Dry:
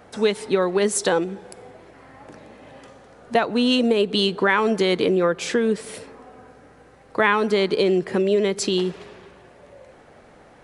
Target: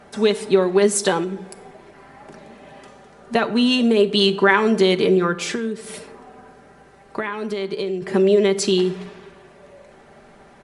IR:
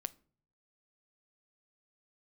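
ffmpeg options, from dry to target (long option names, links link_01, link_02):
-filter_complex "[0:a]bandreject=frequency=530:width=12,aecho=1:1:5.1:0.49,asettb=1/sr,asplit=3[link_01][link_02][link_03];[link_01]atrim=end=5.474[link_04];[link_02]atrim=start=5.47:end=8.02,asetpts=PTS-STARTPTS,afade=type=in:duration=0.004:curve=qsin,afade=type=out:start_time=2.546:duration=0.004:curve=qsin,acompressor=threshold=-23dB:ratio=10[link_05];[link_03]atrim=start=8.016[link_06];[link_04][link_05]acrossfade=duration=0.004:curve1=hsin:curve2=qsin[link_07];[link_07][link_06]acrossfade=duration=0.004:curve1=qsin:curve2=hsin[link_08];[1:a]atrim=start_sample=2205,atrim=end_sample=6174,asetrate=23814,aresample=44100[link_09];[link_08][link_09]afir=irnorm=-1:irlink=0"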